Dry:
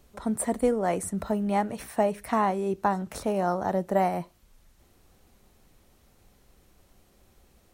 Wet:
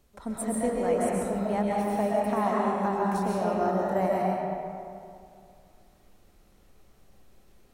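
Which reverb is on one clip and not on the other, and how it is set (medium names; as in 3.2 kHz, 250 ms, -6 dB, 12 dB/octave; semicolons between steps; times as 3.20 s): algorithmic reverb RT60 2.4 s, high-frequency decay 0.55×, pre-delay 90 ms, DRR -4.5 dB; trim -6 dB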